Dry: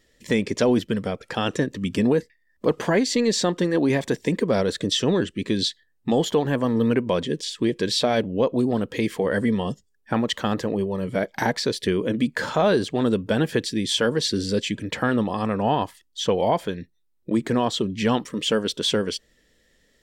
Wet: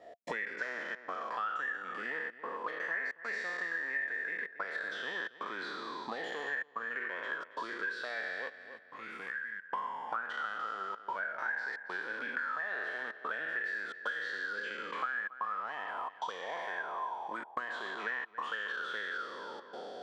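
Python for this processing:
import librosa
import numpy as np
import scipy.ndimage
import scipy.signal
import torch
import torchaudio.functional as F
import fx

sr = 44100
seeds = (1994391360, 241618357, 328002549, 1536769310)

p1 = fx.spec_trails(x, sr, decay_s=2.1)
p2 = fx.dynamic_eq(p1, sr, hz=520.0, q=0.77, threshold_db=-31.0, ratio=4.0, max_db=5)
p3 = 10.0 ** (-21.5 / 20.0) * (np.abs((p2 / 10.0 ** (-21.5 / 20.0) + 3.0) % 4.0 - 2.0) - 1.0)
p4 = p2 + (p3 * 10.0 ** (-12.0 / 20.0))
p5 = fx.step_gate(p4, sr, bpm=111, pattern='x.xxxxx.xxxxxxxx', floor_db=-60.0, edge_ms=4.5)
p6 = fx.auto_wah(p5, sr, base_hz=690.0, top_hz=1800.0, q=18.0, full_db=-11.0, direction='up')
p7 = fx.tone_stack(p6, sr, knobs='6-0-2', at=(8.48, 9.69), fade=0.02)
p8 = p7 + fx.echo_filtered(p7, sr, ms=277, feedback_pct=16, hz=2900.0, wet_db=-17, dry=0)
y = fx.band_squash(p8, sr, depth_pct=100)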